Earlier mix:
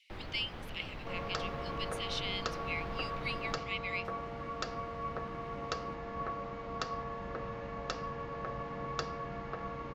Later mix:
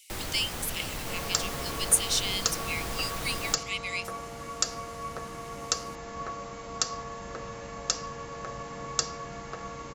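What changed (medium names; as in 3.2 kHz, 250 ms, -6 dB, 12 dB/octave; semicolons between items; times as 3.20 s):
first sound +6.5 dB; master: remove distance through air 330 m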